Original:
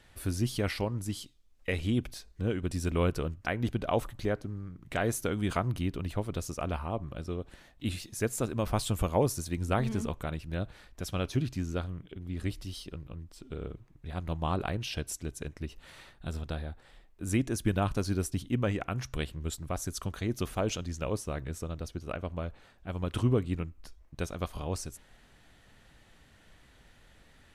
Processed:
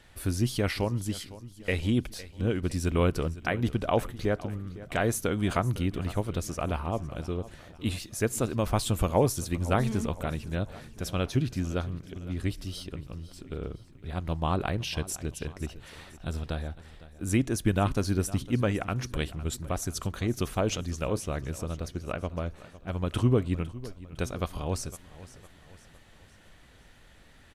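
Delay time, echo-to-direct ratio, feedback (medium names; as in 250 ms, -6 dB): 507 ms, -16.5 dB, 48%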